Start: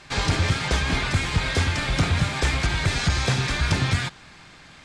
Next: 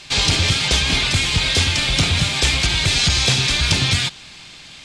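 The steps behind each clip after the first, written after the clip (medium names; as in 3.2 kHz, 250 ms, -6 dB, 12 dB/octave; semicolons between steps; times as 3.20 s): resonant high shelf 2.2 kHz +8.5 dB, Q 1.5; trim +2 dB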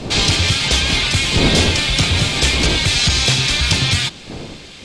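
wind noise 360 Hz -27 dBFS; trim +1.5 dB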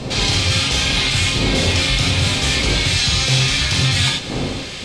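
reverse; compression 6:1, threshold -23 dBFS, peak gain reduction 13 dB; reverse; gated-style reverb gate 120 ms flat, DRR -1.5 dB; trim +4.5 dB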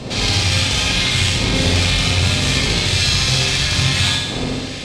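flutter echo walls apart 11.4 m, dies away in 1 s; Chebyshev shaper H 2 -14 dB, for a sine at -1 dBFS; trim -2 dB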